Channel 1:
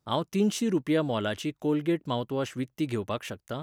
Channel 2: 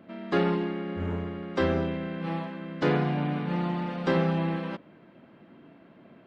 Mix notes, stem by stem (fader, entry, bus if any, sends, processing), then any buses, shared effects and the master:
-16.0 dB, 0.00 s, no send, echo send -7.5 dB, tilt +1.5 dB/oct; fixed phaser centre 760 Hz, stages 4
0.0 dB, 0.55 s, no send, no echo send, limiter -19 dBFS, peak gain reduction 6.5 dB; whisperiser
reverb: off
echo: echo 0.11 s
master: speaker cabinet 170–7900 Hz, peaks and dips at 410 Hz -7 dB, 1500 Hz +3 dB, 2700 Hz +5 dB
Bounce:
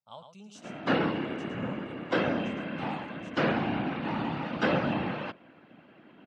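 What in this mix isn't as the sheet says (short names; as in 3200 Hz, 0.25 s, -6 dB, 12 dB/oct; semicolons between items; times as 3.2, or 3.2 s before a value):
stem 1: missing tilt +1.5 dB/oct; stem 2: missing limiter -19 dBFS, peak gain reduction 6.5 dB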